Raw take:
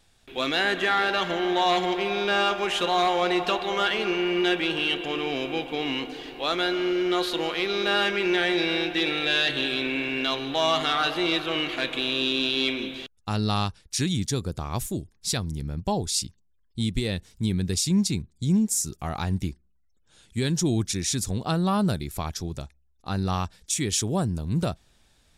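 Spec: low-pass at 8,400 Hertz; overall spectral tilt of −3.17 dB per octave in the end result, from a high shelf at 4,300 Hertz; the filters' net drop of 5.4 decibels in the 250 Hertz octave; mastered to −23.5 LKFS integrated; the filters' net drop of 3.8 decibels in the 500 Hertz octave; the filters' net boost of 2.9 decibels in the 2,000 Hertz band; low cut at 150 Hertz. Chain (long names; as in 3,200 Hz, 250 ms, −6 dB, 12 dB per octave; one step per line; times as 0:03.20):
high-pass filter 150 Hz
low-pass filter 8,400 Hz
parametric band 250 Hz −6 dB
parametric band 500 Hz −3 dB
parametric band 2,000 Hz +5.5 dB
high-shelf EQ 4,300 Hz −5.5 dB
level +3 dB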